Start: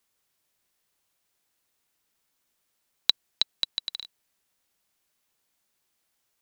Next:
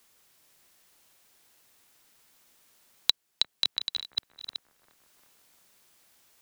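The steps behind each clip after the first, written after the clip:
delay that plays each chunk backwards 422 ms, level −7.5 dB
bucket-brigade delay 351 ms, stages 4,096, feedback 46%, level −18 dB
multiband upward and downward compressor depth 40%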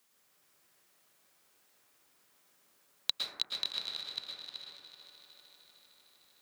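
high-pass filter 110 Hz 12 dB per octave
echo machine with several playback heads 152 ms, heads second and third, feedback 65%, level −14 dB
dense smooth reverb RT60 1.1 s, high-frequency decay 0.25×, pre-delay 100 ms, DRR −2.5 dB
level −8 dB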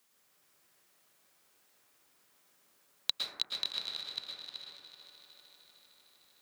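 no processing that can be heard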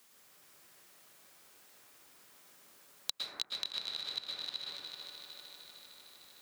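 downward compressor 4 to 1, threshold −44 dBFS, peak gain reduction 16.5 dB
level +8 dB

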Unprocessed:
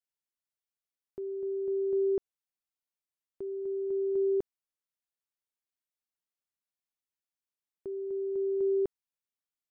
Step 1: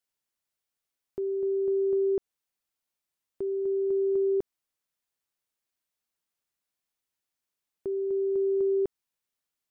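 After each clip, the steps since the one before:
downward compressor, threshold −30 dBFS, peak gain reduction 4.5 dB
level +6.5 dB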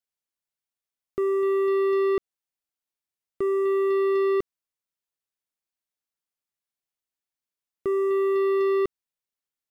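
leveller curve on the samples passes 3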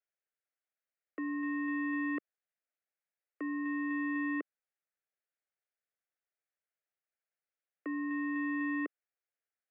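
three-way crossover with the lows and the highs turned down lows −12 dB, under 550 Hz, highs −12 dB, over 2,500 Hz
phaser with its sweep stopped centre 1,100 Hz, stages 6
single-sideband voice off tune −100 Hz 350–3,600 Hz
level +3.5 dB

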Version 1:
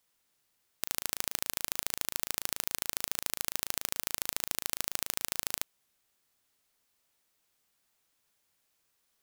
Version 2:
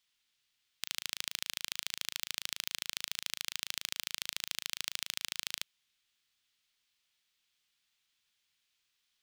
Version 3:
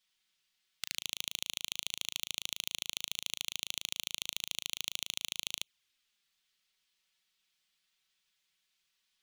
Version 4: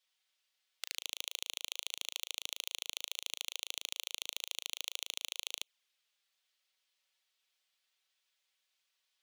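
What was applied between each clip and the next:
drawn EQ curve 130 Hz 0 dB, 610 Hz −7 dB, 3,300 Hz +13 dB, 11,000 Hz −2 dB; level −8 dB
flanger swept by the level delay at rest 5.6 ms, full sweep at −42 dBFS; level +3 dB
four-pole ladder high-pass 430 Hz, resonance 40%; level +5.5 dB

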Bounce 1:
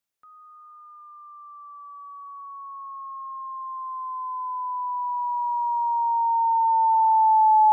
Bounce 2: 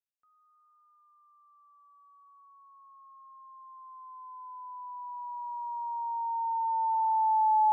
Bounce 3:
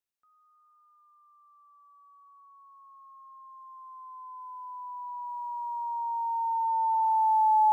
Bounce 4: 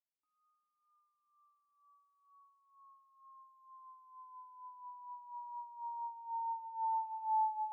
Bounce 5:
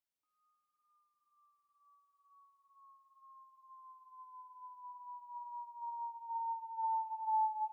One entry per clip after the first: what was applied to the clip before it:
expander for the loud parts 1.5 to 1, over −38 dBFS; level −7 dB
floating-point word with a short mantissa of 6 bits; level +2 dB
formant filter swept between two vowels a-u 2.1 Hz; level −2 dB
single-tap delay 312 ms −13 dB

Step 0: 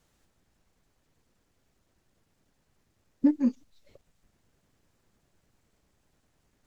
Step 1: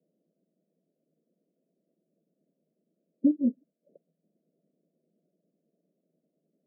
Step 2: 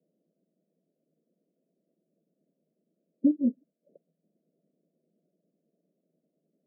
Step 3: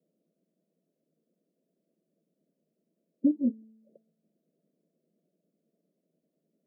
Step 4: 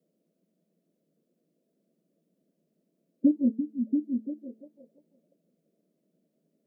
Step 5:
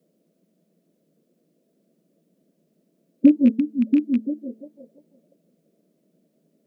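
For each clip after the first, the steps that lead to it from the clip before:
Chebyshev band-pass filter 160–660 Hz, order 5
no processing that can be heard
tuned comb filter 220 Hz, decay 1.1 s, mix 50%; level +4.5 dB
echo through a band-pass that steps 341 ms, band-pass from 170 Hz, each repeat 0.7 octaves, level −2 dB; level +2.5 dB
loose part that buzzes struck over −30 dBFS, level −35 dBFS; level +8.5 dB

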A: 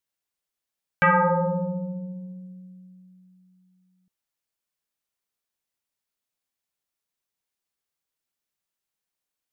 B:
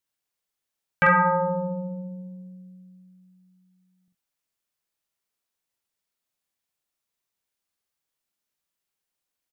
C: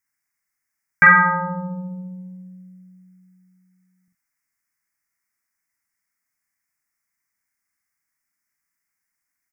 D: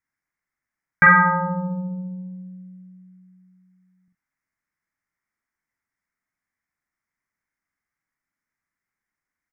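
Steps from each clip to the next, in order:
ambience of single reflections 45 ms −4 dB, 68 ms −12 dB
drawn EQ curve 290 Hz 0 dB, 460 Hz −12 dB, 2,100 Hz +12 dB, 3,500 Hz −30 dB, 5,100 Hz +3 dB; level +2 dB
low-pass filter 1,200 Hz 6 dB per octave; level +2.5 dB

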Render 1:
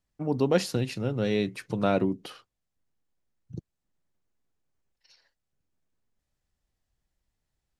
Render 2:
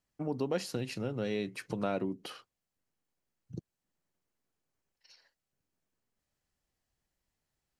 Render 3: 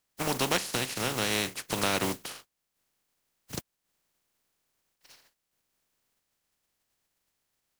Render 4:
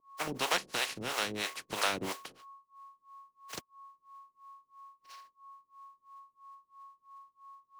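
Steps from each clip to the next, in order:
low-shelf EQ 93 Hz −10.5 dB; notch filter 3,600 Hz, Q 18; downward compressor 2 to 1, threshold −35 dBFS, peak gain reduction 10 dB
compressing power law on the bin magnitudes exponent 0.33; level +5 dB
steady tone 1,100 Hz −51 dBFS; two-band tremolo in antiphase 3 Hz, depth 100%, crossover 420 Hz; mid-hump overdrive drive 12 dB, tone 4,200 Hz, clips at −12 dBFS; level −3 dB

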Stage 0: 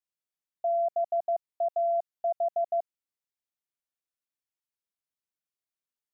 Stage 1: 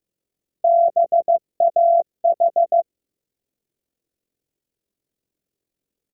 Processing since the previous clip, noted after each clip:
amplitude modulation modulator 43 Hz, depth 55%
low shelf with overshoot 650 Hz +13 dB, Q 1.5
double-tracking delay 15 ms −11 dB
level +9 dB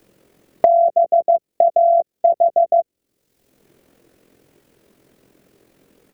multiband upward and downward compressor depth 100%
level +1.5 dB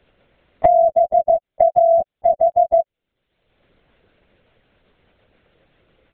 high-pass filter 760 Hz 6 dB per octave
linear-prediction vocoder at 8 kHz whisper
level +3.5 dB

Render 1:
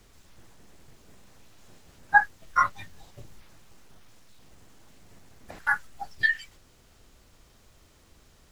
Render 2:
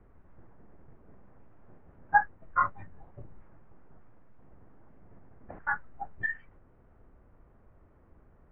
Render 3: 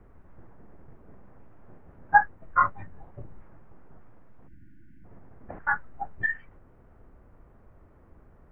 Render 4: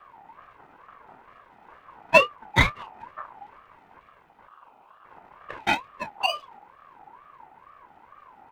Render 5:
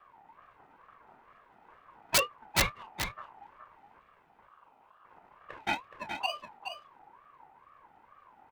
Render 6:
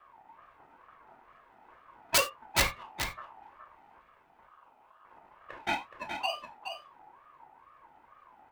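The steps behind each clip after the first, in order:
Bessel low-pass filter 1,100 Hz, order 6
time-frequency box erased 0:04.47–0:05.04, 350–1,400 Hz; level +4.5 dB
lower of the sound and its delayed copy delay 1.8 ms; double-tracking delay 28 ms −12 dB; ring modulator whose carrier an LFO sweeps 1,000 Hz, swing 20%, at 2.2 Hz; level +6.5 dB
wrap-around overflow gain 8 dB; on a send: single-tap delay 421 ms −7.5 dB; on the sum: level −8 dB
parametric band 140 Hz −4 dB 0.92 octaves; reverb whose tail is shaped and stops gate 110 ms falling, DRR 7 dB

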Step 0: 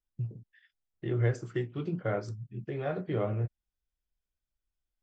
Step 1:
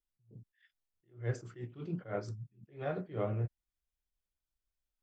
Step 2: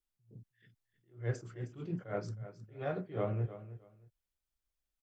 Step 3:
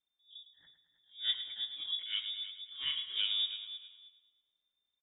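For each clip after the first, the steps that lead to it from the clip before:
level that may rise only so fast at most 190 dB per second; level −3 dB
repeating echo 313 ms, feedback 21%, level −14 dB
voice inversion scrambler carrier 3,600 Hz; repeating echo 108 ms, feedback 55%, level −10.5 dB

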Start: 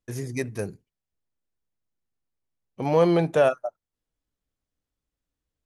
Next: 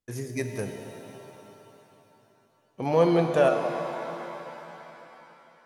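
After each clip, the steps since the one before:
low-shelf EQ 65 Hz −7.5 dB
reverb with rising layers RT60 3.4 s, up +7 semitones, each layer −8 dB, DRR 5.5 dB
level −2 dB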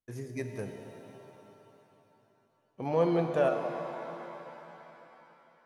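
high-shelf EQ 3,400 Hz −7.5 dB
level −5.5 dB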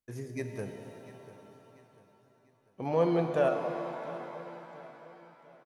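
repeating echo 694 ms, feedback 42%, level −17 dB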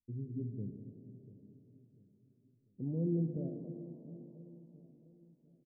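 inverse Chebyshev low-pass filter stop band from 1,700 Hz, stop band 80 dB
level +1 dB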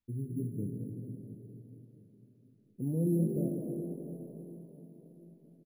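bad sample-rate conversion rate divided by 4×, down filtered, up hold
echo with shifted repeats 215 ms, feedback 33%, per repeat +45 Hz, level −10 dB
comb and all-pass reverb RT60 3.2 s, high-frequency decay 0.75×, pre-delay 95 ms, DRR 9 dB
level +4 dB

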